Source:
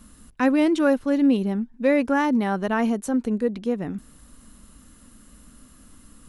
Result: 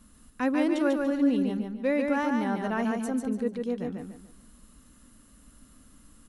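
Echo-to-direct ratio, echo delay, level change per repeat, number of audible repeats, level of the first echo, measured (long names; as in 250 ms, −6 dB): −3.5 dB, 145 ms, −9.5 dB, 4, −4.0 dB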